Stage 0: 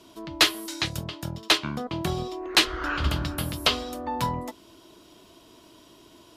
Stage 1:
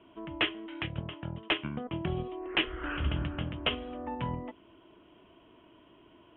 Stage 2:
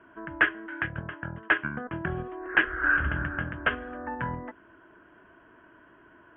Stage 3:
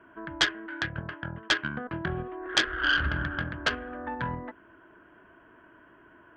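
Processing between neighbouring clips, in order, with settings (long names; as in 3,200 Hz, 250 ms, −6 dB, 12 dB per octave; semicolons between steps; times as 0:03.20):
in parallel at −1.5 dB: output level in coarse steps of 10 dB; on the sum: Butterworth low-pass 3,200 Hz 96 dB per octave; dynamic equaliser 1,100 Hz, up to −7 dB, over −36 dBFS, Q 0.88; level −7.5 dB
low-pass with resonance 1,600 Hz, resonance Q 11
phase distortion by the signal itself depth 0.25 ms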